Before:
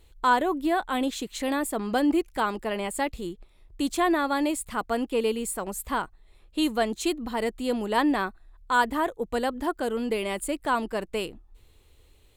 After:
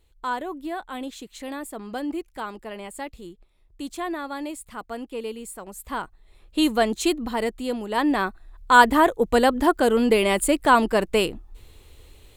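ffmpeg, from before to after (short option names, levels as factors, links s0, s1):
-af "volume=6.31,afade=t=in:st=5.72:d=0.87:silence=0.281838,afade=t=out:st=7.15:d=0.71:silence=0.446684,afade=t=in:st=7.86:d=0.95:silence=0.266073"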